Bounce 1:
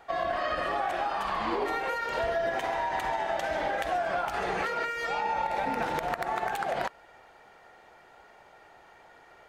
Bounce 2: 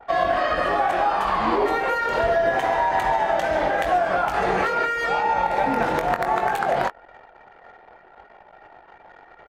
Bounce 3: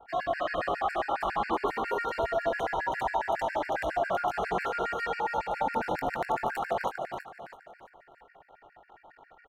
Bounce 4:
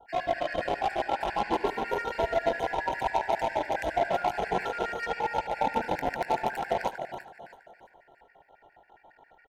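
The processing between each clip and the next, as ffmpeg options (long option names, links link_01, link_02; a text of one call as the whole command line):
ffmpeg -i in.wav -filter_complex "[0:a]asplit=2[link_01][link_02];[link_02]adelay=22,volume=-7.5dB[link_03];[link_01][link_03]amix=inputs=2:normalize=0,anlmdn=0.00158,adynamicequalizer=threshold=0.00708:dfrequency=1900:dqfactor=0.7:tfrequency=1900:tqfactor=0.7:attack=5:release=100:ratio=0.375:range=2.5:mode=cutabove:tftype=highshelf,volume=8.5dB" out.wav
ffmpeg -i in.wav -filter_complex "[0:a]asplit=2[link_01][link_02];[link_02]aecho=0:1:327|654|981|1308|1635:0.531|0.202|0.0767|0.0291|0.0111[link_03];[link_01][link_03]amix=inputs=2:normalize=0,afftfilt=real='re*gt(sin(2*PI*7.3*pts/sr)*(1-2*mod(floor(b*sr/1024/1400),2)),0)':imag='im*gt(sin(2*PI*7.3*pts/sr)*(1-2*mod(floor(b*sr/1024/1400),2)),0)':win_size=1024:overlap=0.75,volume=-6.5dB" out.wav
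ffmpeg -i in.wav -filter_complex "[0:a]asplit=2[link_01][link_02];[link_02]acrusher=bits=3:mix=0:aa=0.5,volume=-5dB[link_03];[link_01][link_03]amix=inputs=2:normalize=0,asuperstop=centerf=1200:order=4:qfactor=3.6,aecho=1:1:74:0.126,volume=-1.5dB" out.wav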